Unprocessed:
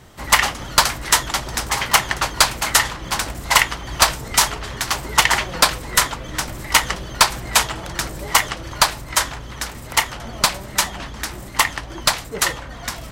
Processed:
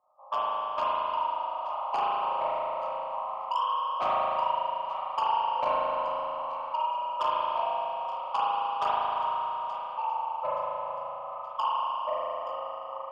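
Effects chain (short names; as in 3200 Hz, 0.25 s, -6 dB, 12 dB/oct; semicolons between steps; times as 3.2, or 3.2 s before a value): spectral trails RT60 1.12 s; gate -24 dBFS, range -14 dB; spectral noise reduction 16 dB; dynamic EQ 670 Hz, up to +5 dB, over -30 dBFS, Q 0.94; compressor 2:1, threshold -30 dBFS, peak gain reduction 13.5 dB; brick-wall FIR band-pass 510–1300 Hz; soft clip -26 dBFS, distortion -9 dB; echo with dull and thin repeats by turns 0.437 s, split 930 Hz, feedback 68%, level -11.5 dB; transient shaper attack +5 dB, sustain 0 dB; spring tank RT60 2.5 s, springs 37 ms, chirp 65 ms, DRR -8 dB; three-band squash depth 40%; gain -4.5 dB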